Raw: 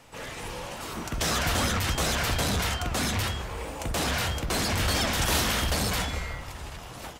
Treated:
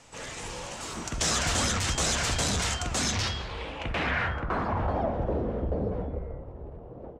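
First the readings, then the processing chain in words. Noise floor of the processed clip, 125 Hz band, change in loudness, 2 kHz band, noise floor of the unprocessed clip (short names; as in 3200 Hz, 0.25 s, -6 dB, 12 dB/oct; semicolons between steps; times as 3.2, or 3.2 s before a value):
-44 dBFS, -2.0 dB, -1.5 dB, -2.0 dB, -42 dBFS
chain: low-pass sweep 7400 Hz -> 480 Hz, 2.98–5.38; gain -2 dB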